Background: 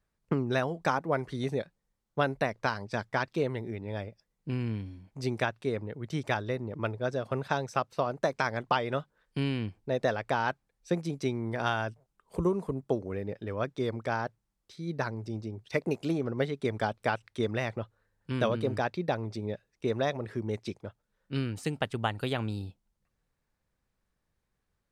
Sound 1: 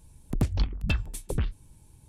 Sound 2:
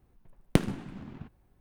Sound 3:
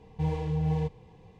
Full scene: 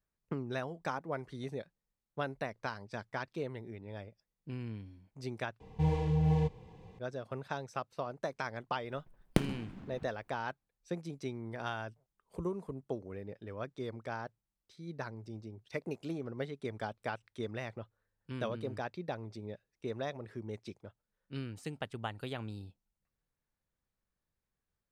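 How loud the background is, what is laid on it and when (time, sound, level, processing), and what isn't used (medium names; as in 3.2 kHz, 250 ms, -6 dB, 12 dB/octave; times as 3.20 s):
background -9 dB
5.60 s: replace with 3 -0.5 dB
8.81 s: add 2 -5.5 dB
not used: 1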